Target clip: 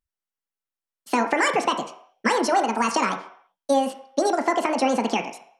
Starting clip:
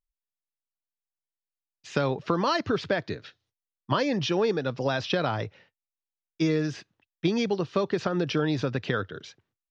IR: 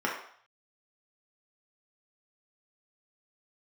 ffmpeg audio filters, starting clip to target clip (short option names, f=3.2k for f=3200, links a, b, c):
-filter_complex "[0:a]asetrate=76440,aresample=44100,asplit=2[a][b];[1:a]atrim=start_sample=2205[c];[b][c]afir=irnorm=-1:irlink=0,volume=-10dB[d];[a][d]amix=inputs=2:normalize=0"